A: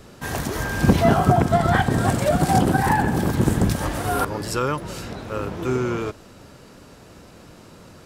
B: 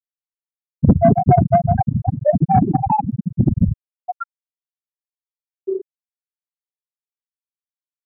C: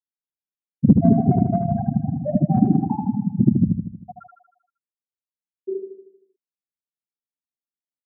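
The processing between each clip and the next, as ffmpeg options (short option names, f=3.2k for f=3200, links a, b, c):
-af "afftfilt=real='re*gte(hypot(re,im),0.794)':imag='im*gte(hypot(re,im),0.794)':win_size=1024:overlap=0.75,equalizer=f=1.5k:w=5.1:g=-5,acontrast=84"
-filter_complex "[0:a]bandpass=f=230:t=q:w=1.8:csg=0,asplit=2[a][b];[b]aecho=0:1:78|156|234|312|390|468|546:0.531|0.287|0.155|0.0836|0.0451|0.0244|0.0132[c];[a][c]amix=inputs=2:normalize=0,volume=1.5dB"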